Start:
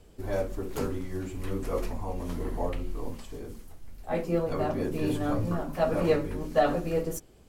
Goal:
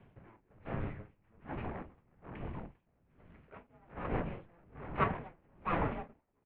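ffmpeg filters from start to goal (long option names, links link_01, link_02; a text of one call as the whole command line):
ffmpeg -i in.wav -filter_complex "[0:a]asplit=4[link_01][link_02][link_03][link_04];[link_02]adelay=212,afreqshift=51,volume=-16.5dB[link_05];[link_03]adelay=424,afreqshift=102,volume=-25.1dB[link_06];[link_04]adelay=636,afreqshift=153,volume=-33.8dB[link_07];[link_01][link_05][link_06][link_07]amix=inputs=4:normalize=0,asplit=2[link_08][link_09];[link_09]acrusher=bits=3:mode=log:mix=0:aa=0.000001,volume=-12dB[link_10];[link_08][link_10]amix=inputs=2:normalize=0,asetrate=51156,aresample=44100,aresample=11025,aeval=exprs='abs(val(0))':channel_layout=same,aresample=44100,highpass=frequency=160:width_type=q:width=0.5412,highpass=frequency=160:width_type=q:width=1.307,lowpass=frequency=2900:width_type=q:width=0.5176,lowpass=frequency=2900:width_type=q:width=0.7071,lowpass=frequency=2900:width_type=q:width=1.932,afreqshift=-340,aeval=exprs='val(0)*pow(10,-33*(0.5-0.5*cos(2*PI*1.2*n/s))/20)':channel_layout=same" out.wav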